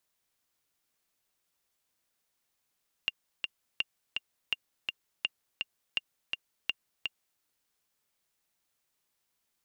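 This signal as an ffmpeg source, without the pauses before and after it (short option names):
-f lavfi -i "aevalsrc='pow(10,(-15-3.5*gte(mod(t,2*60/166),60/166))/20)*sin(2*PI*2800*mod(t,60/166))*exp(-6.91*mod(t,60/166)/0.03)':d=4.33:s=44100"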